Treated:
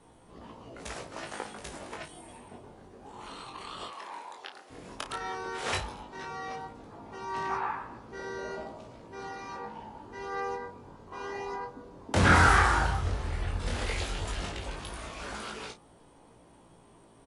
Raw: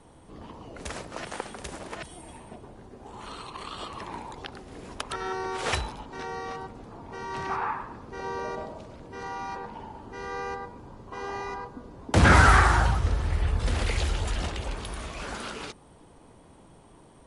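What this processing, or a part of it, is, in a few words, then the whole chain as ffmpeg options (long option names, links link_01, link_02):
double-tracked vocal: -filter_complex "[0:a]asettb=1/sr,asplit=3[link_01][link_02][link_03];[link_01]atrim=end=3.884[link_04];[link_02]atrim=start=3.88:end=4.7,asetpts=PTS-STARTPTS,afade=type=in:duration=0.004:curve=qsin,afade=type=out:start_time=0.816:duration=0.004:curve=qsin,highpass=530[link_05];[link_03]atrim=start=4.696[link_06];[link_04][link_05]acrossfade=duration=0.004:curve1=hsin:curve2=qsin[link_07];[link_07][link_06]acrossfade=duration=0.004:curve1=qsin:curve2=hsin,lowshelf=frequency=160:gain=-5,asplit=2[link_08][link_09];[link_09]adelay=33,volume=-10dB[link_10];[link_08][link_10]amix=inputs=2:normalize=0,flanger=delay=17.5:depth=5.6:speed=0.12"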